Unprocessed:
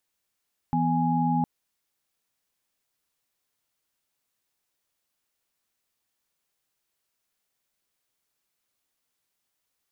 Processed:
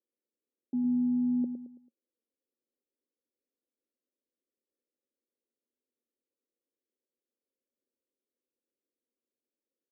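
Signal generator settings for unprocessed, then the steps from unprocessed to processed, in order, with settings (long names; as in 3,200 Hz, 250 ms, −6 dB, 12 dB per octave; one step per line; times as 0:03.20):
held notes E3/B3/G#5 sine, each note −25.5 dBFS 0.71 s
elliptic band-pass filter 230–540 Hz, stop band 40 dB
on a send: repeating echo 110 ms, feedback 39%, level −8.5 dB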